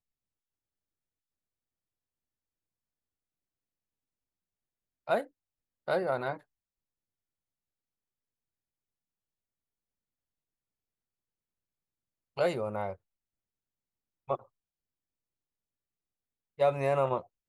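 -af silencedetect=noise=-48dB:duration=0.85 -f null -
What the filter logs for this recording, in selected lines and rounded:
silence_start: 0.00
silence_end: 5.07 | silence_duration: 5.07
silence_start: 6.41
silence_end: 12.37 | silence_duration: 5.96
silence_start: 12.95
silence_end: 14.29 | silence_duration: 1.34
silence_start: 14.43
silence_end: 16.59 | silence_duration: 2.16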